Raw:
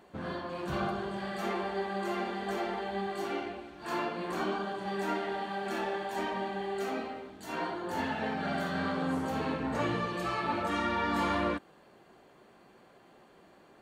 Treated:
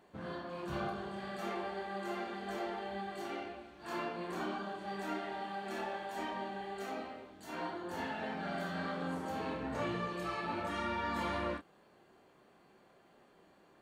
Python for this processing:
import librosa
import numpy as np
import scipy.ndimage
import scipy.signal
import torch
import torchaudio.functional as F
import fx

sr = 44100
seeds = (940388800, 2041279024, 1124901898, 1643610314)

y = fx.doubler(x, sr, ms=29.0, db=-6.0)
y = F.gain(torch.from_numpy(y), -6.5).numpy()